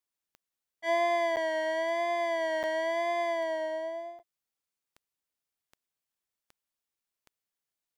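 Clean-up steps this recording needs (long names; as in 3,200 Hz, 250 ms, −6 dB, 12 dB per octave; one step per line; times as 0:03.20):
click removal
repair the gap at 0:01.36/0:02.63/0:04.19, 8.2 ms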